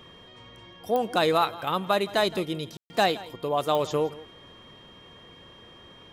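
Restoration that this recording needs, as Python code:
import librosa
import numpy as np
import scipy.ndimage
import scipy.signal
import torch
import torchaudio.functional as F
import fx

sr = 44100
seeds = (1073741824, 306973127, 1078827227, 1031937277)

y = fx.fix_declick_ar(x, sr, threshold=10.0)
y = fx.notch(y, sr, hz=3200.0, q=30.0)
y = fx.fix_ambience(y, sr, seeds[0], print_start_s=4.73, print_end_s=5.23, start_s=2.77, end_s=2.9)
y = fx.fix_echo_inverse(y, sr, delay_ms=167, level_db=-19.0)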